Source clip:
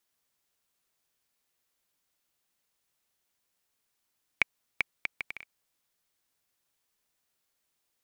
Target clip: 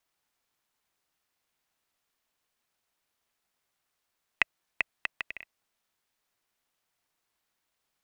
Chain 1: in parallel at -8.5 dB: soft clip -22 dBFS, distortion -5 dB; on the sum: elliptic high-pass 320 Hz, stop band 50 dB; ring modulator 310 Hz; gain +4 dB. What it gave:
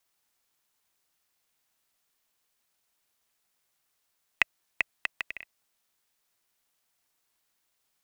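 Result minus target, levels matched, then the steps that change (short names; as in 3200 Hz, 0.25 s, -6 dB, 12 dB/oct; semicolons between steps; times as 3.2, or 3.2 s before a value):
8000 Hz band +4.0 dB
add after elliptic high-pass: high shelf 4500 Hz -7.5 dB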